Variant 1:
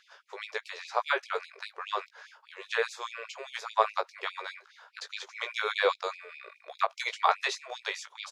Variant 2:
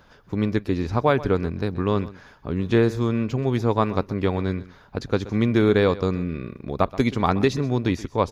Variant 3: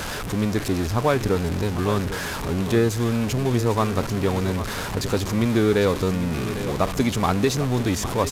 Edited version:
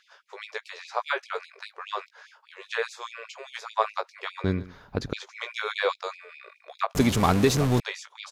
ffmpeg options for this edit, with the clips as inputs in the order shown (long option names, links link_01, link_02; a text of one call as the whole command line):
ffmpeg -i take0.wav -i take1.wav -i take2.wav -filter_complex "[0:a]asplit=3[link_01][link_02][link_03];[link_01]atrim=end=4.442[link_04];[1:a]atrim=start=4.438:end=5.132[link_05];[link_02]atrim=start=5.128:end=6.952[link_06];[2:a]atrim=start=6.948:end=7.802[link_07];[link_03]atrim=start=7.798[link_08];[link_04][link_05]acrossfade=duration=0.004:curve1=hsin:curve2=hsin[link_09];[link_09][link_06]acrossfade=duration=0.004:curve1=hsin:curve2=hsin[link_10];[link_10][link_07]acrossfade=duration=0.004:curve1=hsin:curve2=hsin[link_11];[link_11][link_08]acrossfade=duration=0.004:curve1=hsin:curve2=hsin" out.wav